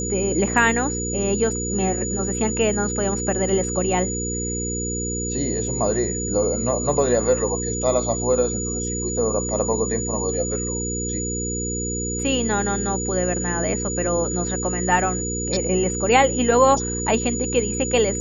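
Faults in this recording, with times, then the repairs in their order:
mains hum 60 Hz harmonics 8 −28 dBFS
whistle 6,900 Hz −27 dBFS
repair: hum removal 60 Hz, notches 8
notch filter 6,900 Hz, Q 30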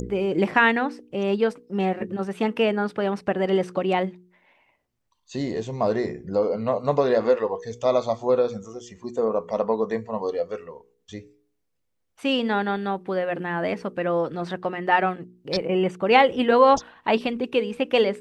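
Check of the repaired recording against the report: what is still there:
none of them is left

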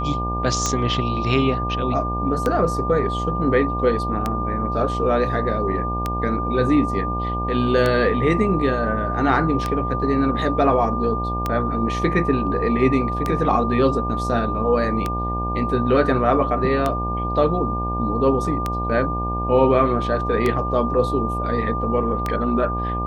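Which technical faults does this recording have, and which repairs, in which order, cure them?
mains buzz 60 Hz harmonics 17 −26 dBFS
scratch tick 33 1/3 rpm −8 dBFS
whistle 1,200 Hz −25 dBFS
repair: click removal
hum removal 60 Hz, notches 17
notch filter 1,200 Hz, Q 30

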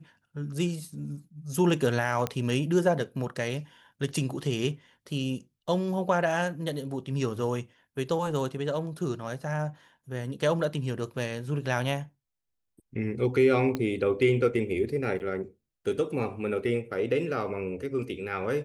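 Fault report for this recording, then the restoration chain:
0:02.27: click −14 dBFS
0:13.75: click −16 dBFS
0:15.19–0:15.20: drop-out 9.4 ms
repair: click removal
repair the gap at 0:15.19, 9.4 ms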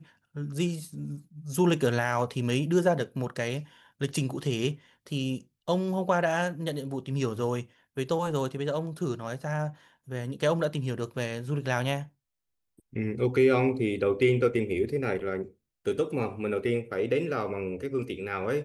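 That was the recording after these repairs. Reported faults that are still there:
0:13.75: click

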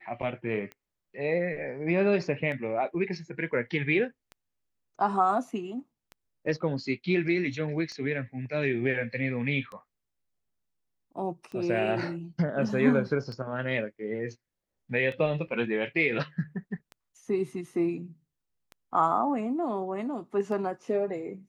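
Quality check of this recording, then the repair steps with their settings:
scratch tick 33 1/3 rpm −28 dBFS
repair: click removal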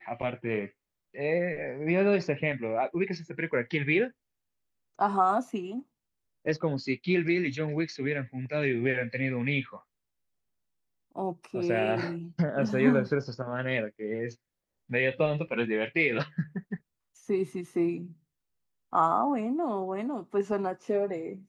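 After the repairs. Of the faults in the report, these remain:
none of them is left

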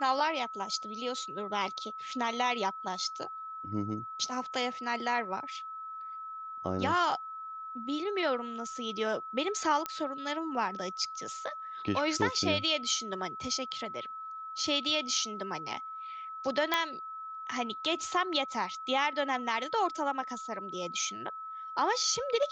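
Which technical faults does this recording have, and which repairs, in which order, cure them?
whistle 1,300 Hz −39 dBFS
0:09.86: click −17 dBFS
0:16.74: click −12 dBFS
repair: click removal
notch filter 1,300 Hz, Q 30

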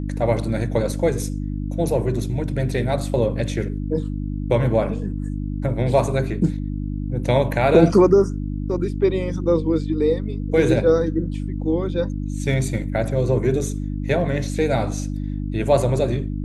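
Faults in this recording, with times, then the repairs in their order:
mains hum 50 Hz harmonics 6 −26 dBFS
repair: hum removal 50 Hz, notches 6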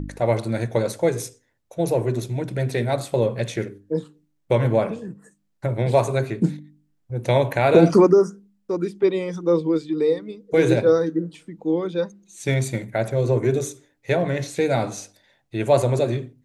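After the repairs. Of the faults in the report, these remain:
none of them is left

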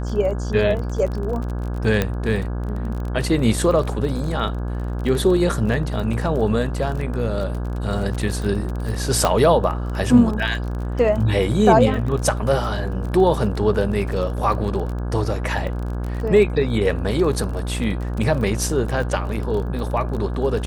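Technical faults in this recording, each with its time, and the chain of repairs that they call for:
mains buzz 60 Hz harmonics 28 −25 dBFS
surface crackle 27 per second −27 dBFS
0:02.02: click −6 dBFS
0:09.25: click −5 dBFS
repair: click removal
hum removal 60 Hz, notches 28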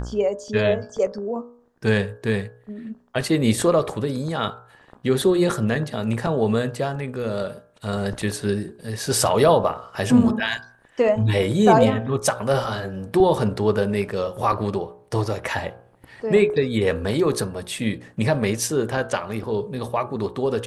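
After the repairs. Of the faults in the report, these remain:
none of them is left

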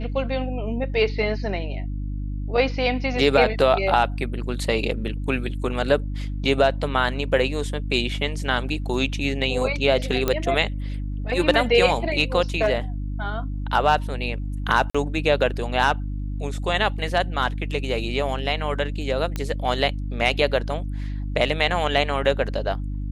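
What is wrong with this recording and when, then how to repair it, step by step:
mains hum 50 Hz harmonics 6 −28 dBFS
0:10.28: click −7 dBFS
0:14.90–0:14.95: drop-out 45 ms
0:19.36: click −13 dBFS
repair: click removal
hum removal 50 Hz, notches 6
repair the gap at 0:14.90, 45 ms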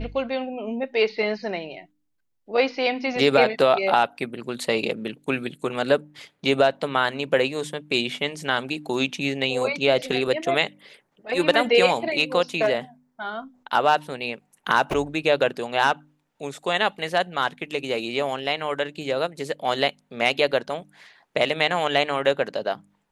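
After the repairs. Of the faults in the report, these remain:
none of them is left

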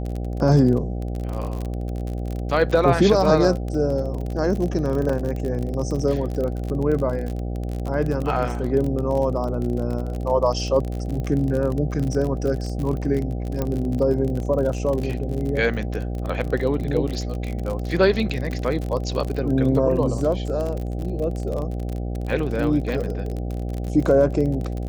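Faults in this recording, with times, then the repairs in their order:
mains buzz 60 Hz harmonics 13 −27 dBFS
surface crackle 38 per second −26 dBFS
0:05.09: drop-out 4.5 ms
0:13.62: click −12 dBFS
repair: click removal
hum removal 60 Hz, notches 13
repair the gap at 0:05.09, 4.5 ms

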